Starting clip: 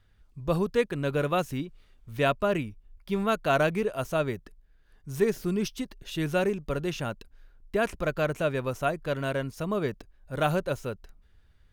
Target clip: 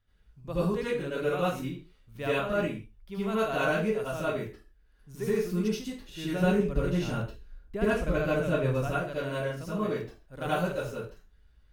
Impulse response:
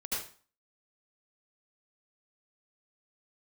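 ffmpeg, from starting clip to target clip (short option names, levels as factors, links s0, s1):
-filter_complex "[0:a]asettb=1/sr,asplit=3[s0][s1][s2];[s0]atrim=end=6.304[s3];[s1]atrim=start=6.3:end=8.88,asetpts=PTS-STARTPTS,afade=t=in:d=0.004:c=qsin,afade=t=out:st=2.576:d=0.004:c=qsin,lowshelf=f=300:g=9.5[s4];[s2]atrim=start=8.876[s5];[s3][s4]acrossfade=d=0.004:c1=hsin:c2=qsin[s6];[s6][s5]acrossfade=d=0.004:c1=qsin:c2=hsin[s7];[1:a]atrim=start_sample=2205,afade=t=out:st=0.3:d=0.01,atrim=end_sample=13671[s8];[s7][s8]afir=irnorm=-1:irlink=0,volume=0.501"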